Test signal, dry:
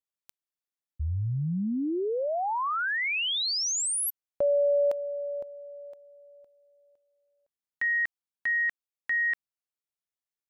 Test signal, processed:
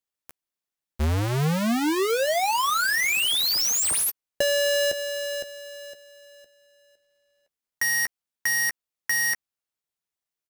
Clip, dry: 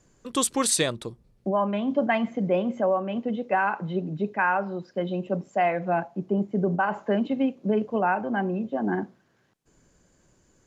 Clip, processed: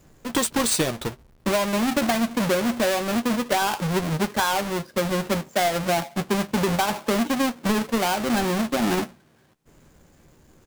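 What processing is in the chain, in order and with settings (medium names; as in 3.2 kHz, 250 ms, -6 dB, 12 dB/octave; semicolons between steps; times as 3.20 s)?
square wave that keeps the level; doubling 13 ms -10 dB; compression, threshold -22 dBFS; trim +2.5 dB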